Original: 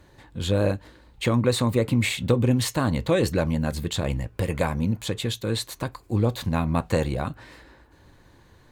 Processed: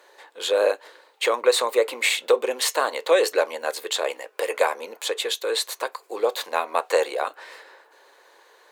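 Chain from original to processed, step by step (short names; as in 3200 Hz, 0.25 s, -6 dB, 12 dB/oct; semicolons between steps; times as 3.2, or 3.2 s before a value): elliptic high-pass 430 Hz, stop band 70 dB; gain +6 dB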